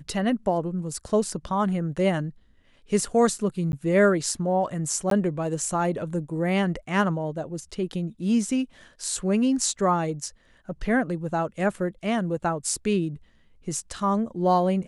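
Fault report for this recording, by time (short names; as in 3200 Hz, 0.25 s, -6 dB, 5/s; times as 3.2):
3.72–3.73 gap
5.1–5.11 gap 13 ms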